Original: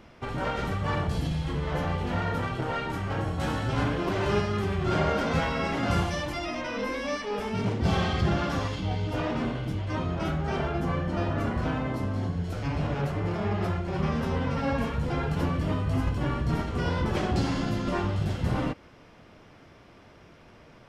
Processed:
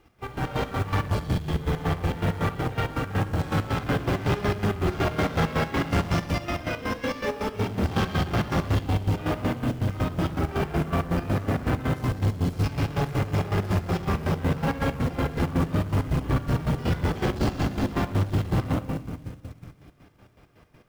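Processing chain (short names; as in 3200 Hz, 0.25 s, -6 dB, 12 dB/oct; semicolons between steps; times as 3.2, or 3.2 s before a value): 11.84–14.05 high shelf 3600 Hz +9.5 dB; shoebox room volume 3200 m³, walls mixed, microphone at 3.8 m; tube stage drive 21 dB, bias 0.3; chopper 5.4 Hz, depth 60%, duty 45%; companded quantiser 6-bit; upward expander 1.5:1, over -49 dBFS; gain +3.5 dB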